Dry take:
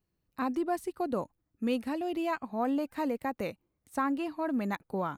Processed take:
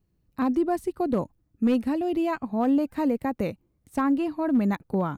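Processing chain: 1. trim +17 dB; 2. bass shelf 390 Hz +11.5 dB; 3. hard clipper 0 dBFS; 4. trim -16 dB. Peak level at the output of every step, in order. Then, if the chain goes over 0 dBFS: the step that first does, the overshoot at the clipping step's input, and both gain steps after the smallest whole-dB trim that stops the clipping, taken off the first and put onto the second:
-2.0 dBFS, +3.5 dBFS, 0.0 dBFS, -16.0 dBFS; step 2, 3.5 dB; step 1 +13 dB, step 4 -12 dB

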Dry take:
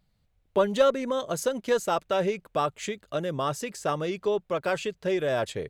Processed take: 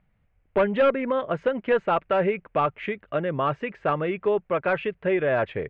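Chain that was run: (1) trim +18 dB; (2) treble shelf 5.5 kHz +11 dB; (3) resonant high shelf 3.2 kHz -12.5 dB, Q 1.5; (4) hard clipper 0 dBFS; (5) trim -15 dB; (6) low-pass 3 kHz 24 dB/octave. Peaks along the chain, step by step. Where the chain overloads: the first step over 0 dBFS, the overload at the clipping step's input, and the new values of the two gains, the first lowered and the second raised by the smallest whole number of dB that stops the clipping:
+10.0 dBFS, +10.5 dBFS, +9.5 dBFS, 0.0 dBFS, -15.0 dBFS, -13.5 dBFS; step 1, 9.5 dB; step 1 +8 dB, step 5 -5 dB

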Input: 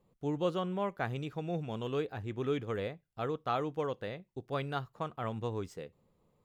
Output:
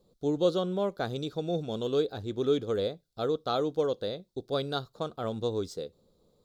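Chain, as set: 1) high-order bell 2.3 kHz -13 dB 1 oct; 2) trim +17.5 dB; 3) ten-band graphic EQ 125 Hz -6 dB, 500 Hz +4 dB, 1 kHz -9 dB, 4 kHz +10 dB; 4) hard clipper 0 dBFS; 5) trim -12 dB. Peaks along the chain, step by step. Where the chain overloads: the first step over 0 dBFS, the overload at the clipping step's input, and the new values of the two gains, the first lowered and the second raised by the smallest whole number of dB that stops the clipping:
-19.5 dBFS, -2.0 dBFS, -3.0 dBFS, -3.0 dBFS, -15.0 dBFS; nothing clips

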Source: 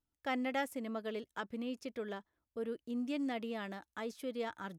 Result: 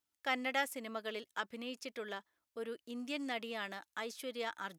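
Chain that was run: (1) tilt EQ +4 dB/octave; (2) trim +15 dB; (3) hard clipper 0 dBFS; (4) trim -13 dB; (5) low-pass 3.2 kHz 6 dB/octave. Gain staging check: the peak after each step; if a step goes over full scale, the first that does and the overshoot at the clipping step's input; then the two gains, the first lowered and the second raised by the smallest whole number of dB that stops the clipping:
-19.0 dBFS, -4.0 dBFS, -4.0 dBFS, -17.0 dBFS, -19.5 dBFS; nothing clips

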